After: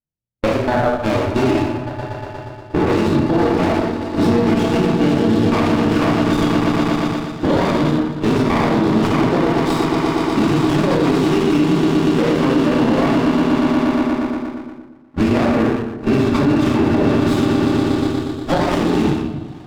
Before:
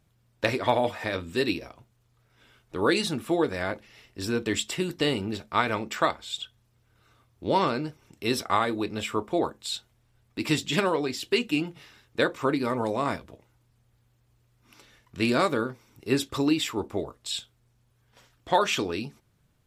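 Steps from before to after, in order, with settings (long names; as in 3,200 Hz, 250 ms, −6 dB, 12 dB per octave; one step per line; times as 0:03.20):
downward compressor 8 to 1, threshold −38 dBFS, peak gain reduction 21 dB
low-pass that shuts in the quiet parts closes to 840 Hz, open at −36 dBFS
low-pass filter 3,100 Hz 12 dB per octave
echo that builds up and dies away 119 ms, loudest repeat 8, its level −10 dB
noise reduction from a noise print of the clip's start 17 dB
noise gate −42 dBFS, range −35 dB
convolution reverb RT60 0.90 s, pre-delay 4 ms, DRR −5.5 dB
boost into a limiter +27 dB
windowed peak hold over 17 samples
level −5.5 dB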